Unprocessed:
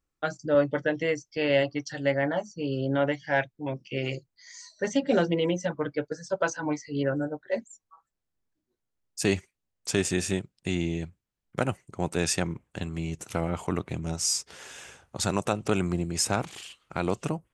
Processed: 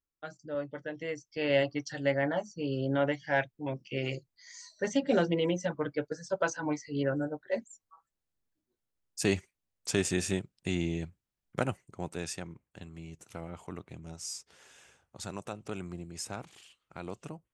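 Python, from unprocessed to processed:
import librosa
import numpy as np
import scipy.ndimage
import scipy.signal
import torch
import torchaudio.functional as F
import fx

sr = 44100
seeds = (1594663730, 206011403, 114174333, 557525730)

y = fx.gain(x, sr, db=fx.line((0.82, -13.0), (1.56, -3.0), (11.59, -3.0), (12.42, -13.0)))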